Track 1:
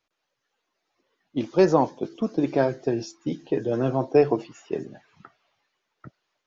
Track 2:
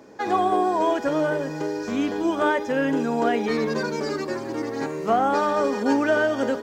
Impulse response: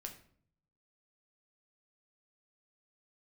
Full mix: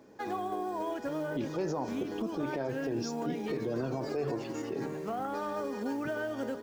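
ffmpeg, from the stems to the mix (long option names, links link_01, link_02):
-filter_complex "[0:a]alimiter=limit=-17dB:level=0:latency=1,volume=-0.5dB[link_01];[1:a]lowshelf=frequency=260:gain=6,acompressor=threshold=-22dB:ratio=2.5,acrusher=bits=7:mode=log:mix=0:aa=0.000001,volume=-10.5dB[link_02];[link_01][link_02]amix=inputs=2:normalize=0,alimiter=level_in=1dB:limit=-24dB:level=0:latency=1:release=77,volume=-1dB"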